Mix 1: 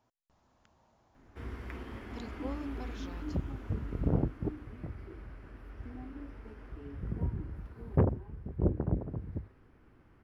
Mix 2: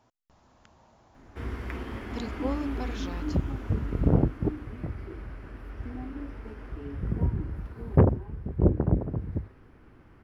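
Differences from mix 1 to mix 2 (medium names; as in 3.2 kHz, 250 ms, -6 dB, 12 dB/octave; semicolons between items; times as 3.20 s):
speech +9.0 dB; background +7.0 dB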